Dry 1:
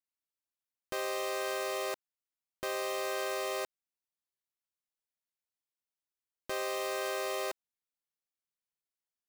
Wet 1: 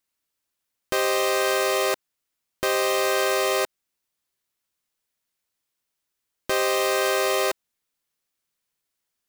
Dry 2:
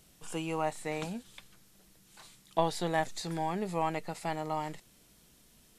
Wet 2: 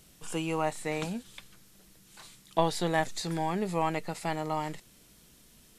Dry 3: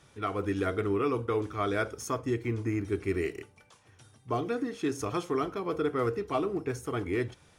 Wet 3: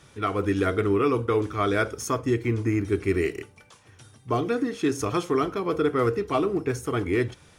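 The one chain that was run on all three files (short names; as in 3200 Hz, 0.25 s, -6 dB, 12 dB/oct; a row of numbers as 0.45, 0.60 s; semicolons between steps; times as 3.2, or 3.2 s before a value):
bell 750 Hz -2.5 dB 0.77 oct; normalise peaks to -12 dBFS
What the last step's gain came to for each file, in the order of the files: +13.0, +3.5, +6.5 dB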